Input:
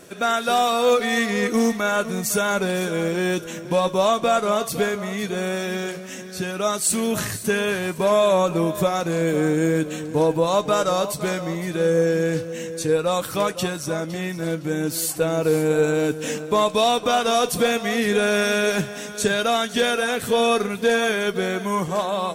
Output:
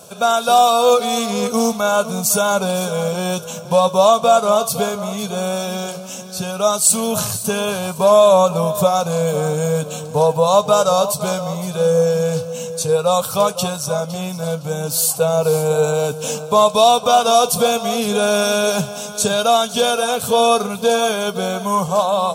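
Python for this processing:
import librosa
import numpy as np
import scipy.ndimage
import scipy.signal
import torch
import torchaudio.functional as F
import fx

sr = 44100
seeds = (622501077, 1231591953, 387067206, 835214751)

y = scipy.signal.sosfilt(scipy.signal.butter(2, 110.0, 'highpass', fs=sr, output='sos'), x)
y = fx.fixed_phaser(y, sr, hz=780.0, stages=4)
y = y * 10.0 ** (8.5 / 20.0)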